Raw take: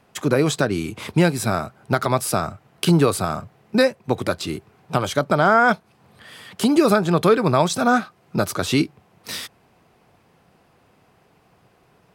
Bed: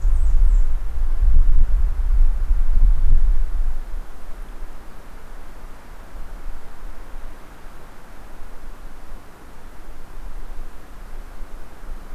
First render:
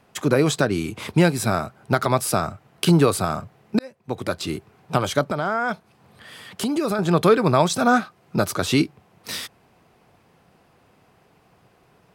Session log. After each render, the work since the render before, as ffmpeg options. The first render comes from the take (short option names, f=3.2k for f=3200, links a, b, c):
-filter_complex "[0:a]asettb=1/sr,asplit=3[a][b][c];[a]atrim=end=5.234[d];[b]atrim=start=5.23:end=6.99,asetpts=PTS-STARTPTS,afade=t=in:d=0.004:c=qsin,afade=t=out:st=1.756:d=0.004:c=qsin,acompressor=threshold=-25dB:ratio=2:attack=3.2:release=140:knee=1:detection=peak[e];[c]atrim=start=6.986[f];[d][e]acrossfade=d=0.004:c1=hsin:c2=qsin[g];[g][f]acrossfade=d=0.004:c1=qsin:c2=hsin,asplit=2[h][i];[h]atrim=end=3.79,asetpts=PTS-STARTPTS,afade=t=out:st=3.786:d=0.004:c=hsin[j];[i]atrim=start=3.79,asetpts=PTS-STARTPTS,afade=t=in:d=0.7[k];[j][k]concat=n=2:v=0:a=1"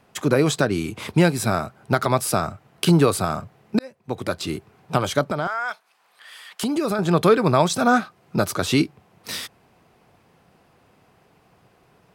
-filter_complex "[0:a]asettb=1/sr,asplit=3[a][b][c];[a]atrim=end=5.474[d];[b]atrim=start=5.47:end=6.63,asetpts=PTS-STARTPTS,afade=t=in:d=0.004:c=qsin,afade=t=out:st=1.156:d=0.004:c=qsin,highpass=990[e];[c]atrim=start=6.626[f];[d][e]acrossfade=d=0.004:c1=hsin:c2=qsin[g];[g][f]acrossfade=d=0.004:c1=qsin:c2=hsin"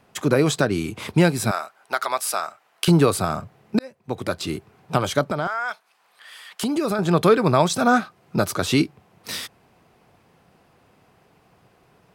-filter_complex "[0:a]asettb=1/sr,asplit=3[a][b][c];[a]atrim=end=1.514[d];[b]atrim=start=1.51:end=2.88,asetpts=PTS-STARTPTS,afade=t=in:d=0.004:c=qsin,afade=t=out:st=1.366:d=0.004:c=qsin,highpass=790[e];[c]atrim=start=2.876[f];[d][e]acrossfade=d=0.004:c1=hsin:c2=qsin[g];[g][f]acrossfade=d=0.004:c1=qsin:c2=hsin"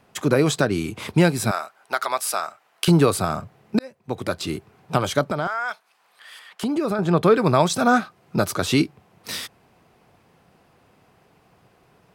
-filter_complex "[0:a]asettb=1/sr,asplit=3[a][b][c];[a]atrim=end=6.394[d];[b]atrim=start=6.39:end=7.35,asetpts=PTS-STARTPTS,afade=t=in:d=0.004:c=qsin,afade=t=out:st=0.956:d=0.004:c=qsin,highshelf=f=3.2k:g=-8.5[e];[c]atrim=start=7.346[f];[d][e]acrossfade=d=0.004:c1=hsin:c2=qsin[g];[g][f]acrossfade=d=0.004:c1=qsin:c2=hsin"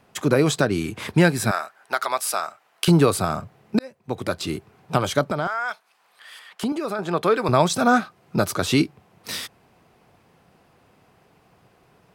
-filter_complex "[0:a]asettb=1/sr,asplit=3[a][b][c];[a]atrim=end=0.814[d];[b]atrim=start=0.81:end=1.94,asetpts=PTS-STARTPTS,afade=t=in:d=0.004:c=qsin,afade=t=out:st=1.126:d=0.004:c=qsin,equalizer=f=1.7k:t=o:w=0.3:g=7[e];[c]atrim=start=1.936[f];[d][e]acrossfade=d=0.004:c1=hsin:c2=qsin[g];[g][f]acrossfade=d=0.004:c1=qsin:c2=hsin,asettb=1/sr,asplit=3[h][i][j];[h]atrim=end=6.724[k];[i]atrim=start=6.72:end=7.49,asetpts=PTS-STARTPTS,afade=t=in:d=0.004:c=qsin,afade=t=out:st=0.766:d=0.004:c=qsin,highpass=f=500:p=1[l];[j]atrim=start=7.486[m];[k][l]acrossfade=d=0.004:c1=hsin:c2=qsin[n];[n][m]acrossfade=d=0.004:c1=qsin:c2=hsin"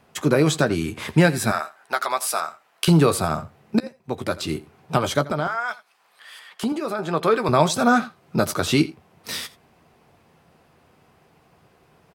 -filter_complex "[0:a]asplit=2[a][b];[b]adelay=13,volume=-10.5dB[c];[a][c]amix=inputs=2:normalize=0,aecho=1:1:84:0.112"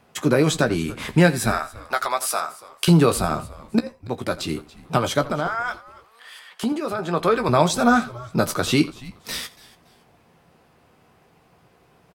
-filter_complex "[0:a]asplit=2[a][b];[b]adelay=17,volume=-12dB[c];[a][c]amix=inputs=2:normalize=0,asplit=3[d][e][f];[e]adelay=283,afreqshift=-120,volume=-20dB[g];[f]adelay=566,afreqshift=-240,volume=-30.5dB[h];[d][g][h]amix=inputs=3:normalize=0"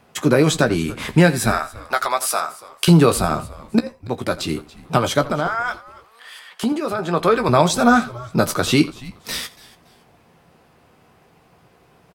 -af "volume=3dB,alimiter=limit=-1dB:level=0:latency=1"